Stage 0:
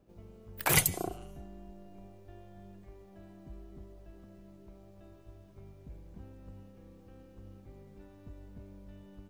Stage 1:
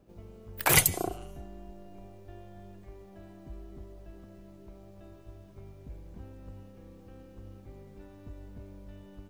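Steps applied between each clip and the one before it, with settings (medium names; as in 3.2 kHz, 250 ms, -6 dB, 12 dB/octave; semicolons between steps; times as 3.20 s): dynamic bell 180 Hz, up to -4 dB, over -57 dBFS, Q 1.8; trim +4 dB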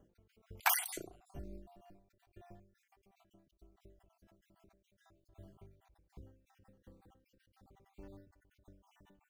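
random holes in the spectrogram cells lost 50%; endings held to a fixed fall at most 100 dB/s; trim -2 dB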